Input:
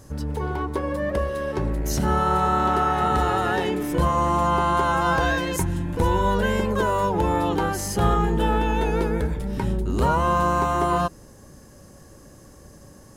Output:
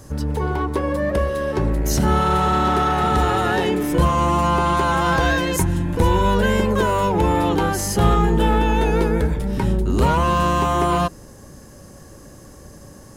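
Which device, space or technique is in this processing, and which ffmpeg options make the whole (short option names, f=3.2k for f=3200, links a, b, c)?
one-band saturation: -filter_complex "[0:a]acrossover=split=410|2200[a][b][c];[b]asoftclip=type=tanh:threshold=-22dB[d];[a][d][c]amix=inputs=3:normalize=0,volume=5dB"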